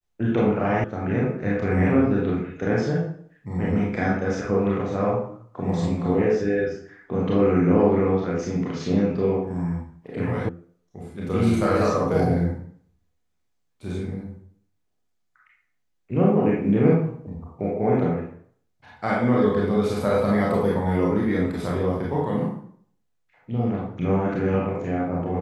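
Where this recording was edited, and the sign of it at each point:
0.84 sound cut off
10.49 sound cut off

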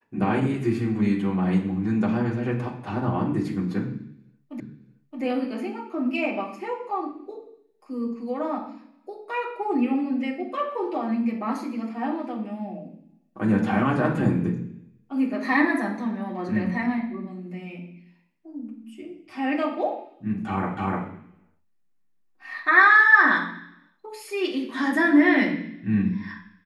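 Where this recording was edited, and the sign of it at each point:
4.6 repeat of the last 0.62 s
20.77 repeat of the last 0.3 s

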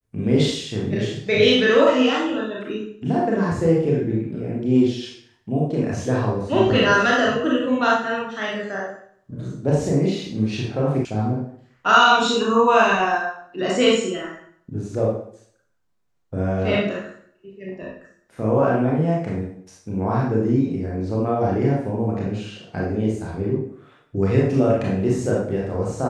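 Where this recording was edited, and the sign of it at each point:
11.05 sound cut off

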